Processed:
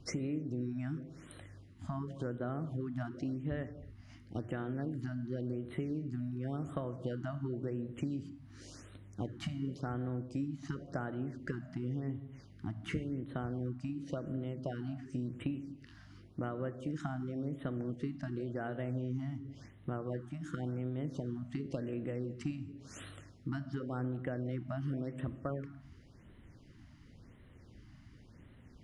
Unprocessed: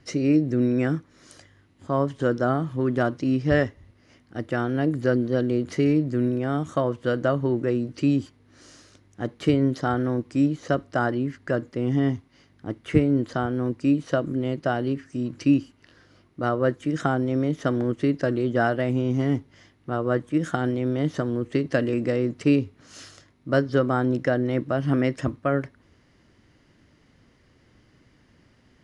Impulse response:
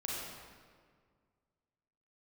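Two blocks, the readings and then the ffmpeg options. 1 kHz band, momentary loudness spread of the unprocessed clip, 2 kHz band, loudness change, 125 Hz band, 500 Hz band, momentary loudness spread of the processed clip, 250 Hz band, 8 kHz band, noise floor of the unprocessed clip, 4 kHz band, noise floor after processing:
-17.5 dB, 7 LU, -17.5 dB, -15.0 dB, -11.0 dB, -17.5 dB, 18 LU, -15.0 dB, n/a, -60 dBFS, -14.0 dB, -58 dBFS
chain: -filter_complex "[0:a]lowshelf=f=180:g=7.5,acompressor=threshold=-32dB:ratio=8,asplit=2[a][b];[1:a]atrim=start_sample=2205,afade=t=out:st=0.35:d=0.01,atrim=end_sample=15876,lowshelf=f=420:g=9[c];[b][c]afir=irnorm=-1:irlink=0,volume=-14dB[d];[a][d]amix=inputs=2:normalize=0,afftfilt=real='re*(1-between(b*sr/1024,410*pow(6000/410,0.5+0.5*sin(2*PI*0.92*pts/sr))/1.41,410*pow(6000/410,0.5+0.5*sin(2*PI*0.92*pts/sr))*1.41))':imag='im*(1-between(b*sr/1024,410*pow(6000/410,0.5+0.5*sin(2*PI*0.92*pts/sr))/1.41,410*pow(6000/410,0.5+0.5*sin(2*PI*0.92*pts/sr))*1.41))':win_size=1024:overlap=0.75,volume=-5dB"

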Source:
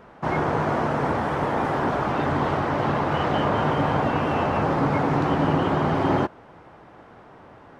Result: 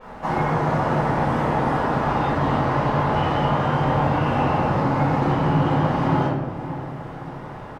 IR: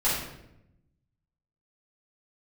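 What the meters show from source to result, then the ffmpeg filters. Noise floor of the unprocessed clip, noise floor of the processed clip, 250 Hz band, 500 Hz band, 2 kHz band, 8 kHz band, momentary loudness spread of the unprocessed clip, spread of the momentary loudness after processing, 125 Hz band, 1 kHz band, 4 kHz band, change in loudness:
-48 dBFS, -36 dBFS, +2.0 dB, +0.5 dB, +0.5 dB, n/a, 3 LU, 11 LU, +5.0 dB, +2.5 dB, +0.5 dB, +2.0 dB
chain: -filter_complex "[0:a]acompressor=threshold=-33dB:ratio=2.5,crystalizer=i=1:c=0,asplit=2[a][b];[b]adelay=575,lowpass=f=920:p=1,volume=-11dB,asplit=2[c][d];[d]adelay=575,lowpass=f=920:p=1,volume=0.5,asplit=2[e][f];[f]adelay=575,lowpass=f=920:p=1,volume=0.5,asplit=2[g][h];[h]adelay=575,lowpass=f=920:p=1,volume=0.5,asplit=2[i][j];[j]adelay=575,lowpass=f=920:p=1,volume=0.5[k];[a][c][e][g][i][k]amix=inputs=6:normalize=0[l];[1:a]atrim=start_sample=2205[m];[l][m]afir=irnorm=-1:irlink=0,adynamicequalizer=threshold=0.00631:dfrequency=6500:dqfactor=0.7:tfrequency=6500:tqfactor=0.7:attack=5:release=100:ratio=0.375:range=2:mode=cutabove:tftype=highshelf,volume=-3dB"

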